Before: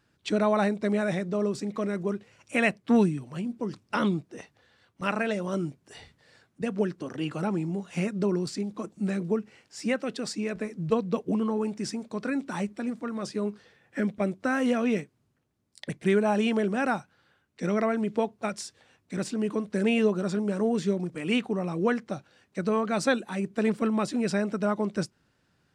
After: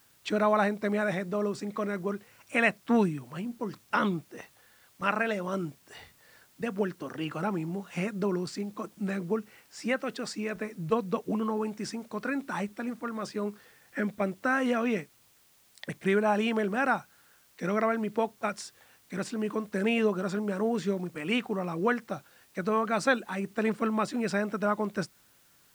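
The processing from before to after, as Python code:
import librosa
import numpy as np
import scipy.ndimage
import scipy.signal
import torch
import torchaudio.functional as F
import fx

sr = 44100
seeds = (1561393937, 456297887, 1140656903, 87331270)

p1 = fx.peak_eq(x, sr, hz=1300.0, db=7.0, octaves=2.0)
p2 = fx.quant_dither(p1, sr, seeds[0], bits=8, dither='triangular')
p3 = p1 + (p2 * 10.0 ** (-8.0 / 20.0))
y = p3 * 10.0 ** (-7.0 / 20.0)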